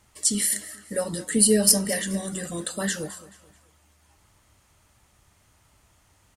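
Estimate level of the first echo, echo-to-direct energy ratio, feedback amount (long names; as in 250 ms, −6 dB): −18.0 dB, −17.5 dB, 37%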